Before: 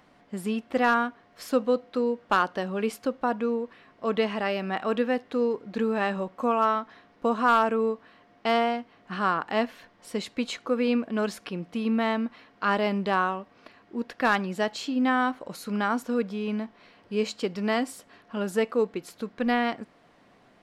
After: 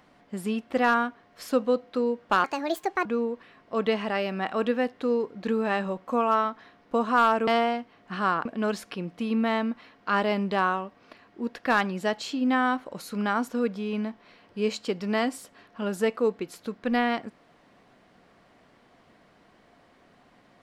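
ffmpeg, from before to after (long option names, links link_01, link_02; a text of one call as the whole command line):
ffmpeg -i in.wav -filter_complex "[0:a]asplit=5[link_01][link_02][link_03][link_04][link_05];[link_01]atrim=end=2.444[link_06];[link_02]atrim=start=2.44:end=3.36,asetpts=PTS-STARTPTS,asetrate=66150,aresample=44100[link_07];[link_03]atrim=start=3.356:end=7.782[link_08];[link_04]atrim=start=8.468:end=9.452[link_09];[link_05]atrim=start=10.998[link_10];[link_06][link_07]acrossfade=duration=0.004:curve1=hsin:curve2=hsin[link_11];[link_11][link_08]acrossfade=duration=0.004:curve1=hsin:curve2=hsin[link_12];[link_12][link_09]acrossfade=duration=0.004:curve1=hsin:curve2=hsin[link_13];[link_13][link_10]acrossfade=duration=0.004:curve1=hsin:curve2=hsin" out.wav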